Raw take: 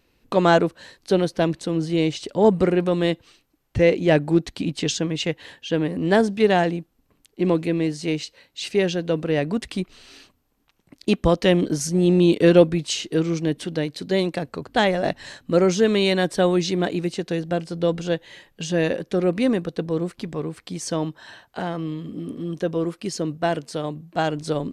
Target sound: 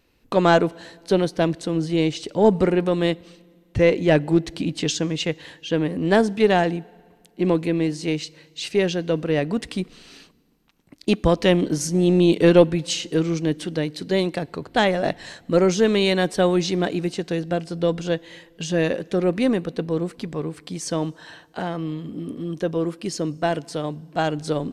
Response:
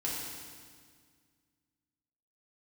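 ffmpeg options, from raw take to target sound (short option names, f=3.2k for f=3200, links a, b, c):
-filter_complex "[0:a]aeval=exprs='0.75*(cos(1*acos(clip(val(0)/0.75,-1,1)))-cos(1*PI/2))+0.0596*(cos(2*acos(clip(val(0)/0.75,-1,1)))-cos(2*PI/2))':c=same,asplit=2[a][b];[1:a]atrim=start_sample=2205[c];[b][c]afir=irnorm=-1:irlink=0,volume=-27dB[d];[a][d]amix=inputs=2:normalize=0"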